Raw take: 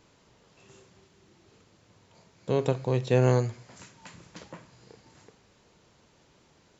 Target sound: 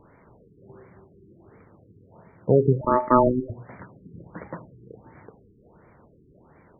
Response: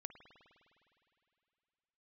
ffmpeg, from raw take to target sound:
-filter_complex "[0:a]asettb=1/sr,asplit=3[link_01][link_02][link_03];[link_01]atrim=end=2.814[link_04];[link_02]atrim=start=2.81:end=3.5,asetpts=PTS-STARTPTS,afade=type=in:duration=0.004:curve=qsin,afade=type=out:start_time=0.686:duration=0.004:curve=qsin,aeval=exprs='val(0)*sin(2*PI*750*n/s)':channel_layout=same[link_05];[link_03]atrim=start=3.496[link_06];[link_04][link_05]acrossfade=duration=0.004:curve1=hsin:curve2=qsin[link_07];[link_07][link_06]acrossfade=duration=0.004:curve1=qsin:curve2=hsin,afftfilt=real='re*lt(b*sr/1024,440*pow(2400/440,0.5+0.5*sin(2*PI*1.4*pts/sr)))':imag='im*lt(b*sr/1024,440*pow(2400/440,0.5+0.5*sin(2*PI*1.4*pts/sr)))':win_size=1024:overlap=0.75,volume=8.5dB"

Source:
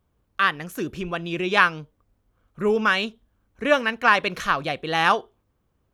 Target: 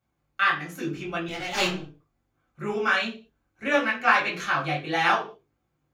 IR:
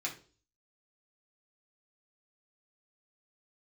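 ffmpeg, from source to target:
-filter_complex "[0:a]asettb=1/sr,asplit=3[link_01][link_02][link_03];[link_01]atrim=end=1.284[link_04];[link_02]atrim=start=1.28:end=1.8,asetpts=PTS-STARTPTS,afade=type=in:duration=0.004:curve=qsin,afade=type=out:start_time=0.516:duration=0.004:curve=qsin,aeval=exprs='abs(val(0))':channel_layout=same[link_05];[link_03]atrim=start=1.796[link_06];[link_04][link_05]acrossfade=duration=0.004:curve1=hsin:curve2=qsin[link_07];[link_07][link_06]acrossfade=duration=0.004:curve1=qsin:curve2=hsin,flanger=delay=17.5:depth=4.1:speed=1.6[link_08];[1:a]atrim=start_sample=2205,afade=type=out:start_time=0.27:duration=0.01,atrim=end_sample=12348[link_09];[link_08][link_09]afir=irnorm=-1:irlink=0,volume=-1dB"

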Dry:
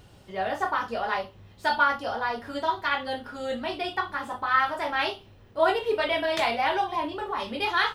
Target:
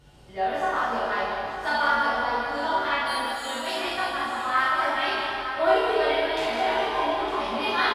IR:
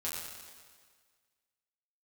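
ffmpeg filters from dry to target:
-filter_complex "[0:a]asettb=1/sr,asplit=3[link_01][link_02][link_03];[link_01]atrim=end=3.054[link_04];[link_02]atrim=start=3.05:end=3.8,asetpts=PTS-STARTPTS,afade=type=in:duration=0.004:curve=qsin,afade=type=out:start_time=0.746:duration=0.004:curve=qsin,aemphasis=mode=production:type=riaa[link_05];[link_03]atrim=start=3.796[link_06];[link_04][link_05]acrossfade=duration=0.004:curve1=hsin:curve2=qsin[link_07];[link_07][link_06]acrossfade=duration=0.004:curve1=qsin:curve2=hsin,asettb=1/sr,asplit=3[link_08][link_09][link_10];[link_08]atrim=end=6.114[link_11];[link_09]atrim=start=6.11:end=6.68,asetpts=PTS-STARTPTS,afade=type=in:duration=0.004:curve=qsin,afade=type=out:start_time=0.566:duration=0.004:curve=qsin,acompressor=threshold=-26dB:ratio=6[link_12];[link_10]atrim=start=6.676[link_13];[link_11][link_12]acrossfade=duration=0.004:curve1=hsin:curve2=qsin[link_14];[link_14][link_13]acrossfade=duration=0.004:curve1=qsin:curve2=hsin,aecho=1:1:911:0.299[link_15];[1:a]atrim=start_sample=2205,asetrate=26019,aresample=44100[link_16];[link_15][link_16]afir=irnorm=-1:irlink=0,volume=-4.5dB"

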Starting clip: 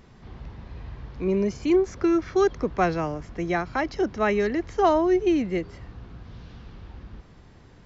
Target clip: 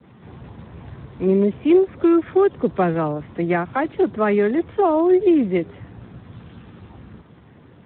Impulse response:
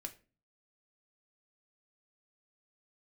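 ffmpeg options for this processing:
-filter_complex "[0:a]adynamicequalizer=threshold=0.0126:dfrequency=2700:dqfactor=0.7:tfrequency=2700:tqfactor=0.7:attack=5:release=100:ratio=0.375:range=2:mode=cutabove:tftype=bell,acrossover=split=370[link_01][link_02];[link_02]acompressor=threshold=-23dB:ratio=8[link_03];[link_01][link_03]amix=inputs=2:normalize=0,volume=6dB" -ar 8000 -c:a libspeex -b:a 8k

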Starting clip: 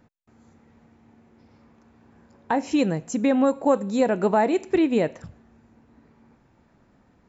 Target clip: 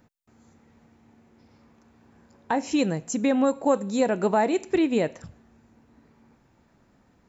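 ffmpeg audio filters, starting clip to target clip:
ffmpeg -i in.wav -af "highshelf=frequency=4400:gain=7.5,volume=-2dB" out.wav

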